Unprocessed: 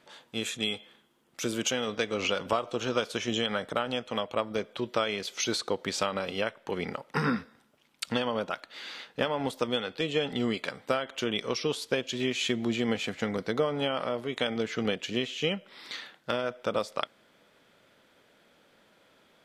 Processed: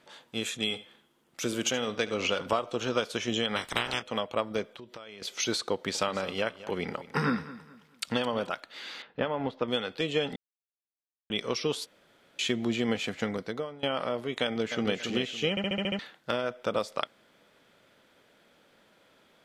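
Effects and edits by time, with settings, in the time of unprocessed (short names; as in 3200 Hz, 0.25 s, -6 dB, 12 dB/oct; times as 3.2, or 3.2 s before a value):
0.62–2.6 echo 74 ms -16 dB
3.55–4.01 spectral limiter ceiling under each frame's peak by 25 dB
4.67–5.22 compressor 4:1, threshold -44 dBFS
5.73–8.49 feedback echo 0.216 s, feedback 32%, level -16.5 dB
9.02–9.68 air absorption 310 m
10.36–11.3 mute
11.86–12.39 room tone
13.23–13.83 fade out, to -21 dB
14.43–14.97 echo throw 0.28 s, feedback 30%, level -6.5 dB
15.5 stutter in place 0.07 s, 7 plays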